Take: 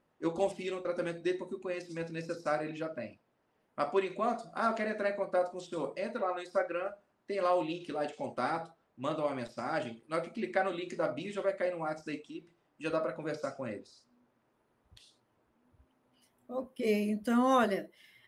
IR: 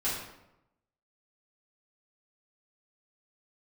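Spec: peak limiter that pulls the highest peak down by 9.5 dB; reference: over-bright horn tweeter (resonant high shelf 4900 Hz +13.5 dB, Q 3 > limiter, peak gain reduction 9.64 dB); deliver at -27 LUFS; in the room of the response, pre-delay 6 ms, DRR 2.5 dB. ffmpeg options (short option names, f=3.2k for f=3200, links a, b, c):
-filter_complex "[0:a]alimiter=level_in=1dB:limit=-24dB:level=0:latency=1,volume=-1dB,asplit=2[a][b];[1:a]atrim=start_sample=2205,adelay=6[c];[b][c]afir=irnorm=-1:irlink=0,volume=-9.5dB[d];[a][d]amix=inputs=2:normalize=0,highshelf=f=4.9k:t=q:w=3:g=13.5,volume=10dB,alimiter=limit=-16.5dB:level=0:latency=1"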